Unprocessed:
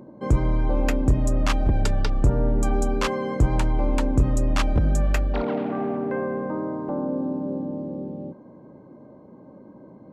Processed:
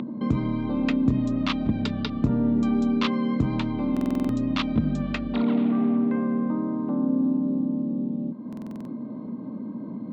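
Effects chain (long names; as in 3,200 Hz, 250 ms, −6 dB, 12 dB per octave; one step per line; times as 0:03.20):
loudspeaker in its box 190–4,500 Hz, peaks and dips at 230 Hz +9 dB, 370 Hz −7 dB, 540 Hz −10 dB, 800 Hz −9 dB, 1,600 Hz −7 dB, 3,700 Hz +6 dB
upward compression, threshold −27 dBFS
low-shelf EQ 250 Hz +6 dB
buffer that repeats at 0:03.92/0:08.48, samples 2,048, times 7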